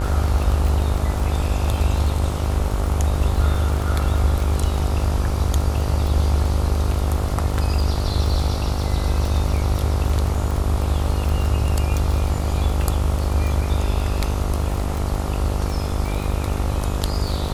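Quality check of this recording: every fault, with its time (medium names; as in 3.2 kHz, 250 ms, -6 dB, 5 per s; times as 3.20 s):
buzz 50 Hz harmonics 28 -25 dBFS
crackle 21 per s -23 dBFS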